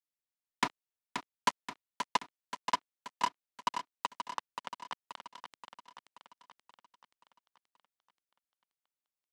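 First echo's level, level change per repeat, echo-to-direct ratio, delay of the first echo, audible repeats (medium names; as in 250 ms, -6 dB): -7.5 dB, -5.0 dB, -6.0 dB, 529 ms, 6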